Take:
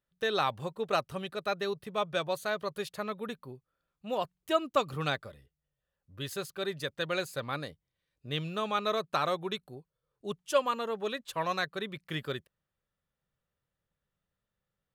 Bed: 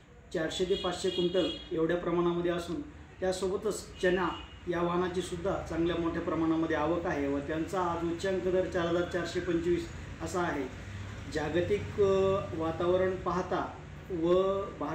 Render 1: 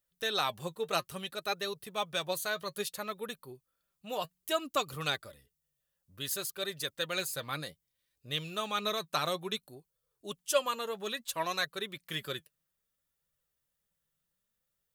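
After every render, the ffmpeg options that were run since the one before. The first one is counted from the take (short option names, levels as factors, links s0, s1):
-af "flanger=delay=1.5:depth=5.3:regen=53:speed=0.6:shape=triangular,crystalizer=i=3.5:c=0"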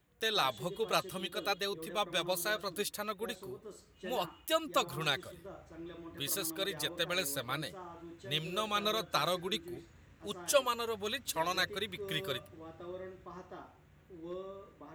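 -filter_complex "[1:a]volume=0.141[s0];[0:a][s0]amix=inputs=2:normalize=0"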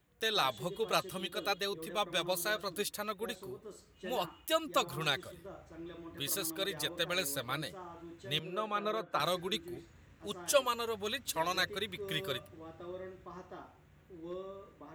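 -filter_complex "[0:a]asettb=1/sr,asplit=3[s0][s1][s2];[s0]atrim=end=8.394[s3];[s1]atrim=start=8.39:end=9.2,asetpts=PTS-STARTPTS,afade=t=in:d=0.004:c=qsin,afade=t=out:st=0.806:d=0.004:c=qsin,acrossover=split=160 2200:gain=0.141 1 0.158[s4][s5][s6];[s4][s5][s6]amix=inputs=3:normalize=0[s7];[s2]atrim=start=9.196[s8];[s3][s7]acrossfade=d=0.004:c1=hsin:c2=qsin[s9];[s9][s8]acrossfade=d=0.004:c1=qsin:c2=hsin"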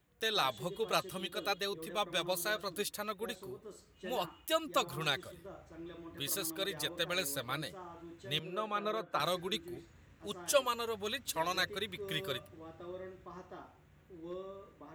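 -af "volume=0.891"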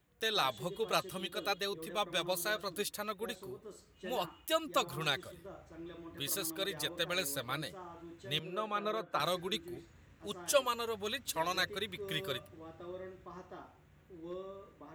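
-af anull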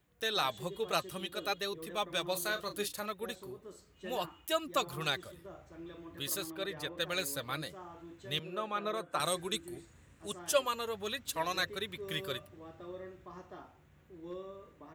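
-filter_complex "[0:a]asplit=3[s0][s1][s2];[s0]afade=t=out:st=2.34:d=0.02[s3];[s1]asplit=2[s4][s5];[s5]adelay=34,volume=0.335[s6];[s4][s6]amix=inputs=2:normalize=0,afade=t=in:st=2.34:d=0.02,afade=t=out:st=3.11:d=0.02[s7];[s2]afade=t=in:st=3.11:d=0.02[s8];[s3][s7][s8]amix=inputs=3:normalize=0,asettb=1/sr,asplit=3[s9][s10][s11];[s9]atrim=end=6.444[s12];[s10]atrim=start=6.44:end=7,asetpts=PTS-STARTPTS,afade=t=in:d=0.004:c=qsin,afade=t=out:st=0.556:d=0.004:c=qsin,bass=f=250:g=0,treble=f=4000:g=-10[s13];[s11]atrim=start=6.996[s14];[s12][s13]acrossfade=d=0.004:c1=hsin:c2=qsin[s15];[s15][s14]acrossfade=d=0.004:c1=qsin:c2=hsin,asettb=1/sr,asplit=3[s16][s17][s18];[s16]atrim=end=8.944[s19];[s17]atrim=start=8.94:end=10.39,asetpts=PTS-STARTPTS,afade=t=in:d=0.004:c=qsin,afade=t=out:st=1.446:d=0.004:c=qsin,equalizer=f=8700:t=o:w=0.48:g=14.5[s20];[s18]atrim=start=10.386[s21];[s19][s20]acrossfade=d=0.004:c1=hsin:c2=qsin[s22];[s22][s21]acrossfade=d=0.004:c1=qsin:c2=hsin"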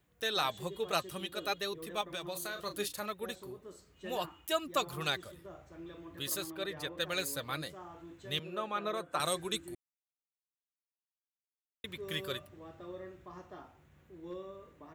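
-filter_complex "[0:a]asettb=1/sr,asplit=3[s0][s1][s2];[s0]atrim=end=2.014[s3];[s1]atrim=start=2.01:end=2.6,asetpts=PTS-STARTPTS,afade=t=in:d=0.004:c=qsin,afade=t=out:st=0.586:d=0.004:c=qsin,acompressor=threshold=0.0158:ratio=4:attack=3.2:release=140:knee=1:detection=peak[s4];[s2]atrim=start=2.596[s5];[s3][s4]acrossfade=d=0.004:c1=hsin:c2=qsin[s6];[s6][s5]acrossfade=d=0.004:c1=qsin:c2=hsin,asplit=3[s7][s8][s9];[s7]atrim=end=9.75,asetpts=PTS-STARTPTS,afade=t=out:st=9.746:d=0.004:c=hsin[s10];[s8]atrim=start=9.75:end=11.84,asetpts=PTS-STARTPTS,volume=0[s11];[s9]atrim=start=11.84,asetpts=PTS-STARTPTS,afade=t=in:d=0.004:c=hsin[s12];[s10][s11][s12]concat=n=3:v=0:a=1"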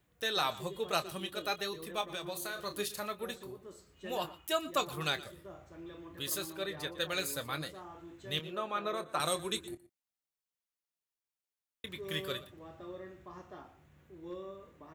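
-filter_complex "[0:a]asplit=2[s0][s1];[s1]adelay=26,volume=0.251[s2];[s0][s2]amix=inputs=2:normalize=0,aecho=1:1:119:0.119"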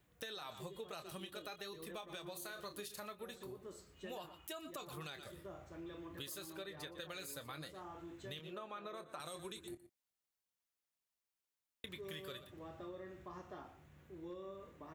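-af "alimiter=level_in=1.33:limit=0.0631:level=0:latency=1:release=43,volume=0.75,acompressor=threshold=0.00562:ratio=6"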